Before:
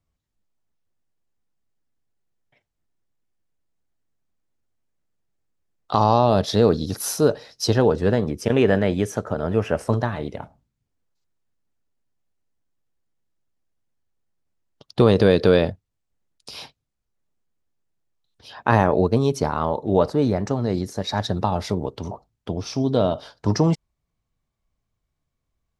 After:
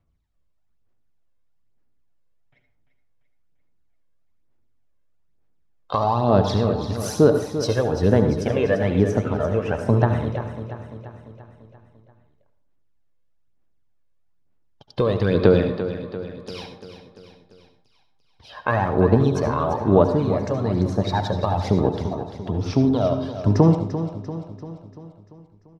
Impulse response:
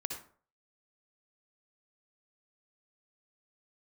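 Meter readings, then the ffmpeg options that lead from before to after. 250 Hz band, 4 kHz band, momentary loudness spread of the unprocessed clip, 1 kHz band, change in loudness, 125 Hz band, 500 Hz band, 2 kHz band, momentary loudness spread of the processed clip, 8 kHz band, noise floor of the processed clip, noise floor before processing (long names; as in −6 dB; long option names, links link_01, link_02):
+1.5 dB, −4.5 dB, 14 LU, −1.0 dB, 0.0 dB, +2.5 dB, 0.0 dB, −1.5 dB, 17 LU, −5.5 dB, −62 dBFS, −79 dBFS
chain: -filter_complex "[0:a]aemphasis=mode=reproduction:type=50fm,acompressor=threshold=-19dB:ratio=2.5,aphaser=in_gain=1:out_gain=1:delay=1.9:decay=0.59:speed=1.1:type=sinusoidal,aecho=1:1:343|686|1029|1372|1715|2058:0.282|0.155|0.0853|0.0469|0.0258|0.0142,asplit=2[link_01][link_02];[1:a]atrim=start_sample=2205,asetrate=37485,aresample=44100[link_03];[link_02][link_03]afir=irnorm=-1:irlink=0,volume=-0.5dB[link_04];[link_01][link_04]amix=inputs=2:normalize=0,volume=-6dB"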